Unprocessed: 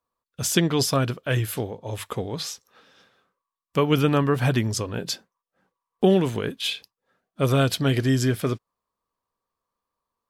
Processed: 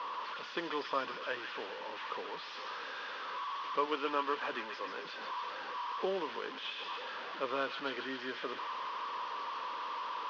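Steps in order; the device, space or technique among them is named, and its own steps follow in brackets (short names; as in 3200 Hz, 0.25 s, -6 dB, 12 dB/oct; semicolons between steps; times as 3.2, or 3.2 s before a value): 3.86–5.13 HPF 220 Hz 12 dB/oct; digital answering machine (BPF 340–3000 Hz; delta modulation 32 kbps, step -28 dBFS; speaker cabinet 370–4100 Hz, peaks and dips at 380 Hz -3 dB, 710 Hz -9 dB, 1000 Hz +8 dB, 2200 Hz -4 dB, 3900 Hz -4 dB); thin delay 0.138 s, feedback 66%, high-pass 1600 Hz, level -4.5 dB; gain -8.5 dB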